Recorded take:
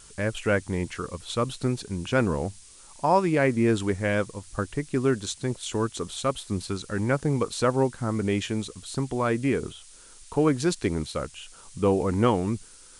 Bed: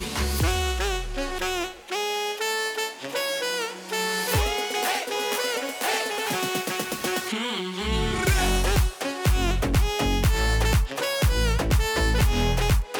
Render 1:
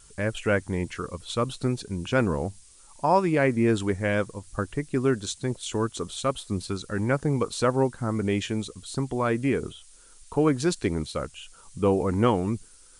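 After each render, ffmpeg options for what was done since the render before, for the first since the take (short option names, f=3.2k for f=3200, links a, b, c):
-af "afftdn=nr=6:nf=-50"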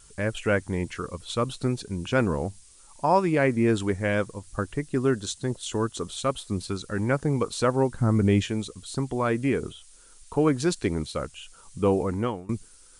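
-filter_complex "[0:a]asettb=1/sr,asplit=3[a][b][c];[a]atrim=end=4.844[d];[b]atrim=start=4.84:end=6.01,asetpts=PTS-STARTPTS,afade=t=in:d=0.004:c=qsin,afade=t=out:st=1.166:d=0.004:c=qsin,bandreject=f=2.3k:w=9.9[e];[c]atrim=start=6.006[f];[d][e]acrossfade=d=0.004:c1=hsin:c2=qsin[g];[g][f]acrossfade=d=0.004:c1=qsin:c2=hsin,asettb=1/sr,asplit=3[h][i][j];[h]atrim=end=7.924[k];[i]atrim=start=7.92:end=8.44,asetpts=PTS-STARTPTS,afade=t=in:d=0.004:c=qsin,afade=t=out:st=0.516:d=0.004:c=qsin,lowshelf=f=230:g=10[l];[j]atrim=start=8.436[m];[k][l]acrossfade=d=0.004:c1=hsin:c2=qsin[n];[n][m]acrossfade=d=0.004:c1=qsin:c2=hsin,asplit=2[o][p];[o]atrim=end=12.49,asetpts=PTS-STARTPTS,afade=t=out:st=11.97:d=0.52:silence=0.0707946[q];[p]atrim=start=12.49,asetpts=PTS-STARTPTS,afade=t=in:d=0.004:c=hsin:silence=0.0707946[r];[q][r]concat=n=2:v=0:a=1"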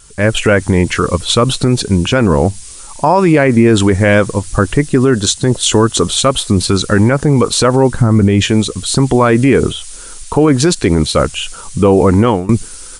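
-af "dynaudnorm=f=180:g=3:m=12dB,alimiter=level_in=10.5dB:limit=-1dB:release=50:level=0:latency=1"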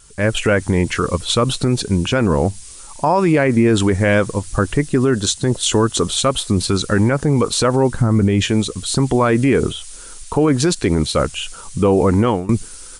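-af "volume=-5dB"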